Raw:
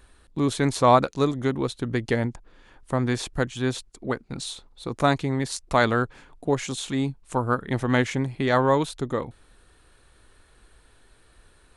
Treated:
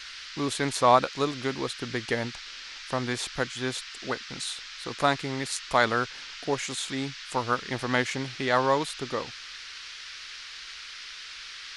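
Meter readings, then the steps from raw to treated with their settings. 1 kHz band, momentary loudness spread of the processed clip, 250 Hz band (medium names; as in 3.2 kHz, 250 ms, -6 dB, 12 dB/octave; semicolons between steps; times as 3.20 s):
-1.5 dB, 15 LU, -7.0 dB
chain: bass shelf 390 Hz -10.5 dB; band noise 1.3–5.4 kHz -42 dBFS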